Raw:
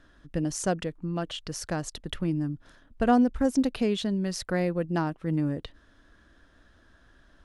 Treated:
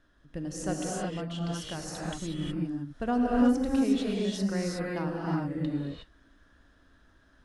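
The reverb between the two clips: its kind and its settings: non-linear reverb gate 0.39 s rising, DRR -4 dB; gain -8 dB

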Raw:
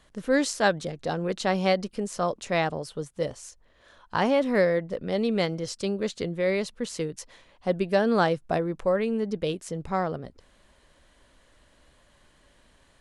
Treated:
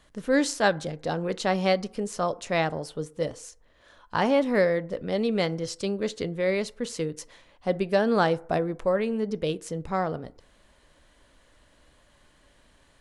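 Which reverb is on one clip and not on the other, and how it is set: FDN reverb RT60 0.54 s, low-frequency decay 0.7×, high-frequency decay 0.4×, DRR 15.5 dB

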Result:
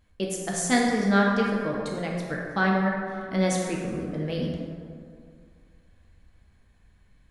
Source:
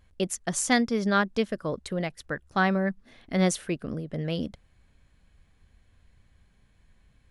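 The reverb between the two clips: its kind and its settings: plate-style reverb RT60 2.2 s, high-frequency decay 0.45×, DRR -2.5 dB; gain -3 dB

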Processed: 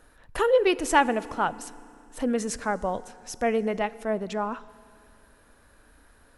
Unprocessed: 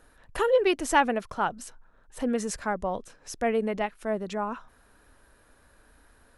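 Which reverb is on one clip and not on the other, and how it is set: FDN reverb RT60 2.4 s, low-frequency decay 1.45×, high-frequency decay 0.95×, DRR 17.5 dB; gain +1.5 dB

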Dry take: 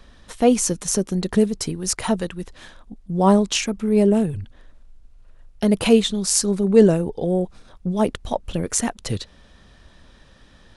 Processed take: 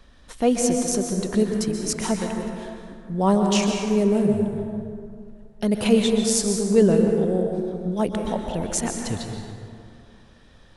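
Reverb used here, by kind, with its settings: plate-style reverb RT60 2.4 s, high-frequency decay 0.45×, pre-delay 0.115 s, DRR 2.5 dB; gain -4 dB

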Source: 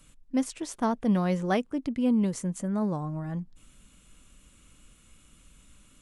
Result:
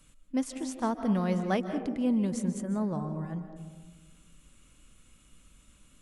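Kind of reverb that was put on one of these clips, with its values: digital reverb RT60 1.4 s, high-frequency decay 0.25×, pre-delay 0.11 s, DRR 8.5 dB; gain -3 dB

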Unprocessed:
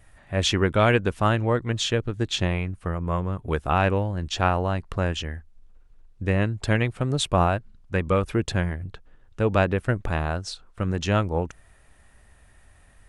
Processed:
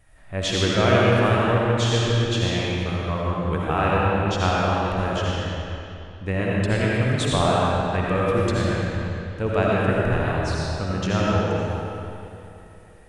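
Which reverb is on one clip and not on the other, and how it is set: digital reverb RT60 2.9 s, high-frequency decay 0.8×, pre-delay 40 ms, DRR -5.5 dB; gain -3.5 dB

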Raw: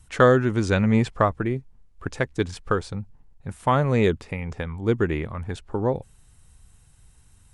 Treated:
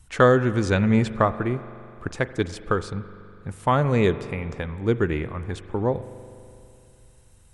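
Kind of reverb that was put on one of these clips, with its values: spring tank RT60 2.7 s, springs 41 ms, chirp 65 ms, DRR 13.5 dB

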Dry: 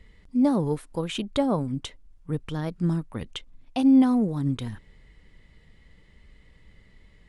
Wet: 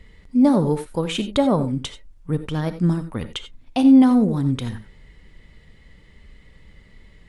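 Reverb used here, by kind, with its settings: non-linear reverb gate 0.11 s rising, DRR 10.5 dB; gain +5.5 dB

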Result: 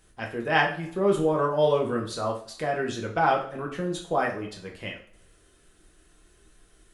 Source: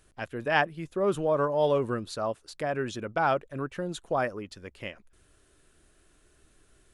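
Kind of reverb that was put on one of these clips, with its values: two-slope reverb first 0.41 s, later 1.6 s, from -26 dB, DRR -0.5 dB

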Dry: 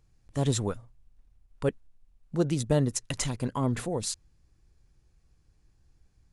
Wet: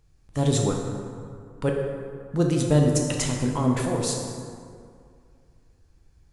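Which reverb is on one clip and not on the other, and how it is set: plate-style reverb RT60 2.3 s, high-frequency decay 0.5×, DRR 0 dB; gain +2.5 dB

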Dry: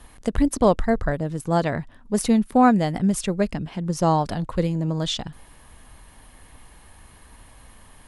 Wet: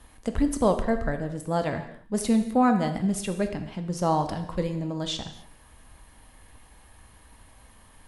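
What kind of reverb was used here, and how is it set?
non-linear reverb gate 0.3 s falling, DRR 6 dB; gain -5 dB

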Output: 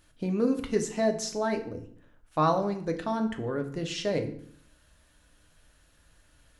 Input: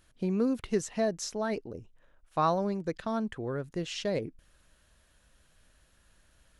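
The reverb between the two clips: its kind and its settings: FDN reverb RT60 0.6 s, low-frequency decay 1.3×, high-frequency decay 0.8×, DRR 4.5 dB; gain +1.5 dB

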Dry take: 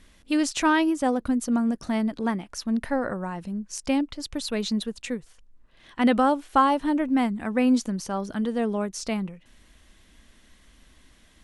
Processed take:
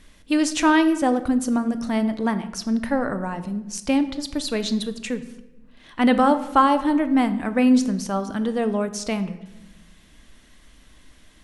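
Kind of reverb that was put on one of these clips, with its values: shoebox room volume 490 m³, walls mixed, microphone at 0.41 m; gain +3 dB

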